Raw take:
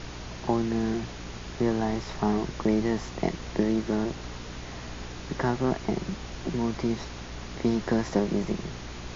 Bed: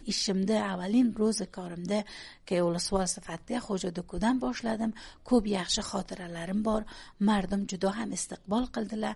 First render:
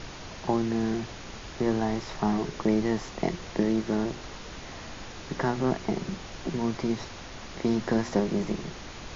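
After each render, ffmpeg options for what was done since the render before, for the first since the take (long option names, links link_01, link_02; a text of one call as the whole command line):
ffmpeg -i in.wav -af "bandreject=frequency=60:width_type=h:width=4,bandreject=frequency=120:width_type=h:width=4,bandreject=frequency=180:width_type=h:width=4,bandreject=frequency=240:width_type=h:width=4,bandreject=frequency=300:width_type=h:width=4,bandreject=frequency=360:width_type=h:width=4,bandreject=frequency=420:width_type=h:width=4" out.wav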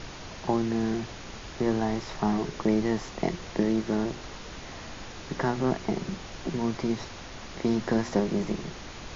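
ffmpeg -i in.wav -af anull out.wav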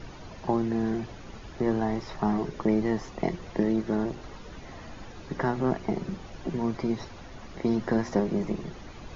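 ffmpeg -i in.wav -af "afftdn=noise_reduction=10:noise_floor=-42" out.wav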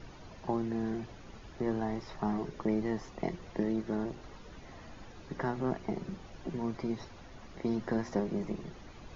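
ffmpeg -i in.wav -af "volume=-6.5dB" out.wav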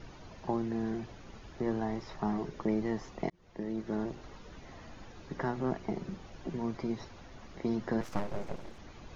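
ffmpeg -i in.wav -filter_complex "[0:a]asettb=1/sr,asplit=3[link_01][link_02][link_03];[link_01]atrim=end=8.014[link_04];[link_02]atrim=start=8.01:end=8.79,asetpts=PTS-STARTPTS,afade=type=in:duration=0.004:curve=qsin,afade=type=out:start_time=0.776:duration=0.004:curve=qsin,aeval=exprs='abs(val(0))':channel_layout=same[link_05];[link_03]atrim=start=8.786[link_06];[link_04][link_05]acrossfade=duration=0.004:curve1=hsin:curve2=qsin[link_07];[link_07][link_06]acrossfade=duration=0.004:curve1=qsin:curve2=hsin,asplit=2[link_08][link_09];[link_08]atrim=end=3.3,asetpts=PTS-STARTPTS,afade=type=out:start_time=3.296:duration=0.004:curve=hsin[link_10];[link_09]atrim=start=3.3,asetpts=PTS-STARTPTS,afade=type=in:duration=0.68[link_11];[link_10][link_11]concat=n=2:v=0:a=1" out.wav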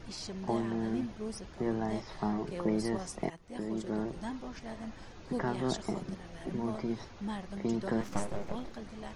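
ffmpeg -i in.wav -i bed.wav -filter_complex "[1:a]volume=-12.5dB[link_01];[0:a][link_01]amix=inputs=2:normalize=0" out.wav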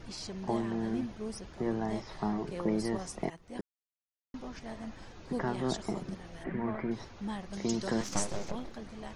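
ffmpeg -i in.wav -filter_complex "[0:a]asplit=3[link_01][link_02][link_03];[link_01]afade=type=out:start_time=6.43:duration=0.02[link_04];[link_02]lowpass=frequency=1900:width_type=q:width=3.3,afade=type=in:start_time=6.43:duration=0.02,afade=type=out:start_time=6.9:duration=0.02[link_05];[link_03]afade=type=in:start_time=6.9:duration=0.02[link_06];[link_04][link_05][link_06]amix=inputs=3:normalize=0,asettb=1/sr,asplit=3[link_07][link_08][link_09];[link_07]atrim=end=7.534[link_10];[link_08]atrim=start=7.53:end=8.51,asetpts=PTS-STARTPTS,afade=type=in:duration=0.004:curve=qsin,afade=type=out:start_time=0.976:duration=0.004:curve=qsin,equalizer=frequency=6000:width_type=o:width=1.6:gain=13.5[link_11];[link_09]atrim=start=8.506[link_12];[link_10][link_11]acrossfade=duration=0.004:curve1=hsin:curve2=qsin[link_13];[link_13][link_12]acrossfade=duration=0.004:curve1=qsin:curve2=hsin,asplit=3[link_14][link_15][link_16];[link_14]atrim=end=3.61,asetpts=PTS-STARTPTS,afade=type=out:start_time=3.606:duration=0.004:curve=hsin[link_17];[link_15]atrim=start=3.61:end=4.34,asetpts=PTS-STARTPTS,volume=0[link_18];[link_16]atrim=start=4.34,asetpts=PTS-STARTPTS,afade=type=in:duration=0.004:curve=hsin[link_19];[link_17][link_18][link_19]concat=n=3:v=0:a=1" out.wav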